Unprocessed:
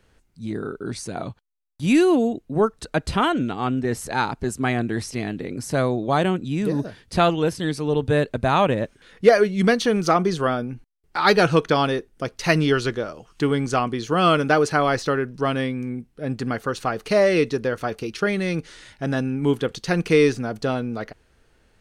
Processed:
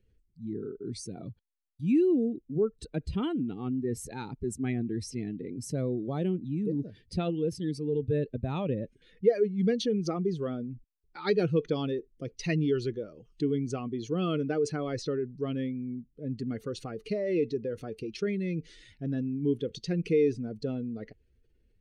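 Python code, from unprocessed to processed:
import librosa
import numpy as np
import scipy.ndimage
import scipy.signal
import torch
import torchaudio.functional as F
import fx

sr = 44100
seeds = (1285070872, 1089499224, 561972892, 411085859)

y = fx.spec_expand(x, sr, power=1.6)
y = fx.band_shelf(y, sr, hz=1000.0, db=-13.0, octaves=1.7)
y = y * librosa.db_to_amplitude(-7.0)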